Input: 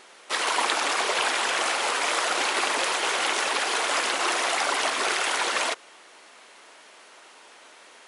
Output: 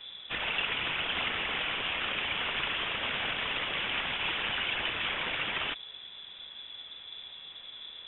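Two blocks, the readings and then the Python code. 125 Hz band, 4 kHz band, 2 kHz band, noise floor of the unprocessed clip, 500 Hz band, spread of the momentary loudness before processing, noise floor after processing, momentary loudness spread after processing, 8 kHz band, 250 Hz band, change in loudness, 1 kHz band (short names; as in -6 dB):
n/a, -4.0 dB, -5.5 dB, -51 dBFS, -12.0 dB, 2 LU, -48 dBFS, 13 LU, under -40 dB, -6.0 dB, -6.5 dB, -12.0 dB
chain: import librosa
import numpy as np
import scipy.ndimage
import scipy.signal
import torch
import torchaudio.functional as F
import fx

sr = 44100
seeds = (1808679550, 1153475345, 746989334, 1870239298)

y = fx.cvsd(x, sr, bps=32000)
y = fx.dmg_noise_band(y, sr, seeds[0], low_hz=140.0, high_hz=390.0, level_db=-40.0)
y = fx.freq_invert(y, sr, carrier_hz=3700)
y = y * librosa.db_to_amplitude(-6.0)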